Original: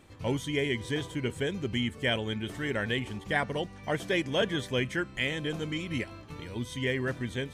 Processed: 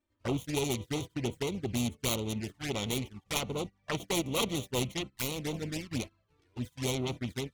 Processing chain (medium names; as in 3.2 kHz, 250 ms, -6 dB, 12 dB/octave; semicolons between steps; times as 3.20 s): self-modulated delay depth 0.98 ms; gate -35 dBFS, range -24 dB; touch-sensitive flanger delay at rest 3.3 ms, full sweep at -29 dBFS